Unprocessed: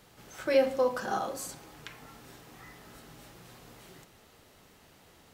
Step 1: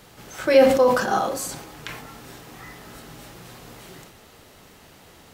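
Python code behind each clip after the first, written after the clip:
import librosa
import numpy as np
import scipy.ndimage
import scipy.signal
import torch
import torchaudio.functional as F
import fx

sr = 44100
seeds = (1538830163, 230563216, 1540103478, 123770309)

y = fx.sustainer(x, sr, db_per_s=59.0)
y = y * librosa.db_to_amplitude(9.0)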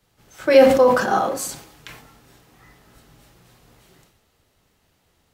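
y = fx.band_widen(x, sr, depth_pct=70)
y = y * librosa.db_to_amplitude(-3.5)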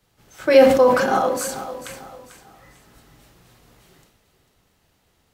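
y = fx.echo_feedback(x, sr, ms=445, feedback_pct=34, wet_db=-13.0)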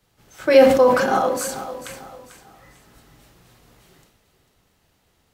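y = x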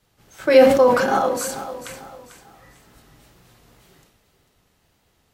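y = fx.wow_flutter(x, sr, seeds[0], rate_hz=2.1, depth_cents=41.0)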